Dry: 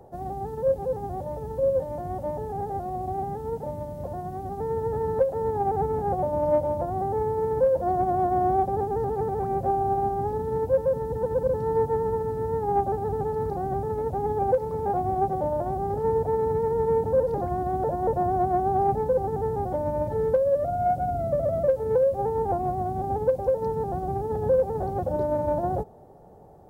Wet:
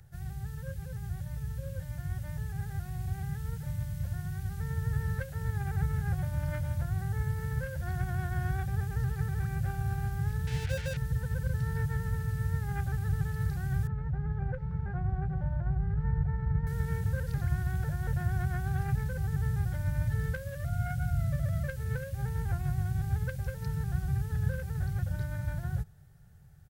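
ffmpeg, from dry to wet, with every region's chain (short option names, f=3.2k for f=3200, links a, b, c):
-filter_complex "[0:a]asettb=1/sr,asplit=3[a][b][c];[a]atrim=end=10.474[d];[b]atrim=start=10.47:end=10.97,asetpts=PTS-STARTPTS,afade=t=in:d=0.004:c=qsin,afade=t=out:st=0.496:d=0.004:c=qsin,lowpass=f=720:t=q:w=6.4,aeval=exprs='sgn(val(0))*max(abs(val(0))-0.00794,0)':c=same[e];[c]atrim=start=10.966[f];[d][e]acrossfade=d=0.004:c1=hsin:c2=qsin[g];[g][f]acrossfade=d=0.004:c1=qsin:c2=hsin,asettb=1/sr,asplit=3[h][i][j];[h]atrim=end=13.874[k];[i]atrim=start=13.87:end=16.67,asetpts=PTS-STARTPTS,afade=t=in:d=0.004:c=qsin,afade=t=out:st=2.796:d=0.004:c=qsin,lowpass=1.2k,asubboost=boost=2.5:cutoff=110,aecho=1:1:5.5:0.43,atrim=end_sample=123480[l];[j]atrim=start=16.666[m];[k][l]acrossfade=d=0.004:c1=hsin:c2=qsin[n];[n][m]acrossfade=d=0.004:c1=qsin:c2=hsin,firequalizer=gain_entry='entry(140,0);entry(240,-25);entry(490,-29);entry(970,-24);entry(1500,2)':delay=0.05:min_phase=1,dynaudnorm=f=370:g=13:m=3dB,volume=2.5dB"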